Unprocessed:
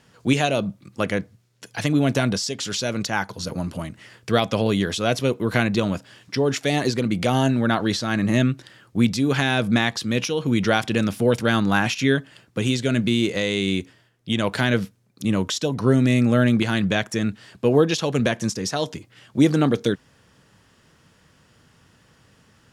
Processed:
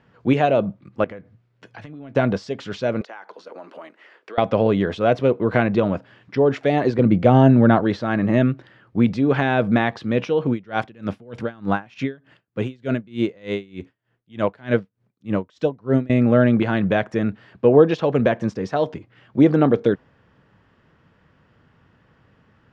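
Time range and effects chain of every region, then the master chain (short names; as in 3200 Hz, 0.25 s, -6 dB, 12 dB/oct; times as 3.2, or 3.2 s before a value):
1.04–2.16 compressor 20:1, threshold -33 dBFS + doubler 18 ms -13.5 dB
3.01–4.38 HPF 370 Hz 24 dB/oct + compressor 12:1, threshold -32 dBFS
6.98–7.83 expander -23 dBFS + low shelf 330 Hz +8.5 dB
10.5–16.1 high shelf 6500 Hz +7 dB + dB-linear tremolo 3.3 Hz, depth 27 dB
whole clip: LPF 2100 Hz 12 dB/oct; dynamic EQ 570 Hz, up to +6 dB, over -35 dBFS, Q 0.88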